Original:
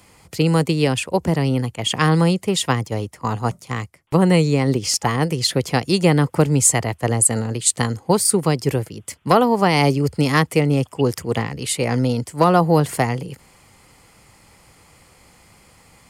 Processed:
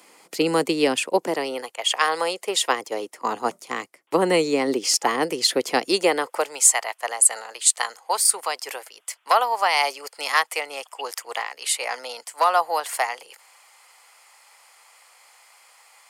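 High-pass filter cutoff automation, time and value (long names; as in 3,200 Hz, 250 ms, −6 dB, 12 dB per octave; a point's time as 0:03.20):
high-pass filter 24 dB per octave
0:01.12 270 Hz
0:01.87 600 Hz
0:03.31 290 Hz
0:05.83 290 Hz
0:06.61 700 Hz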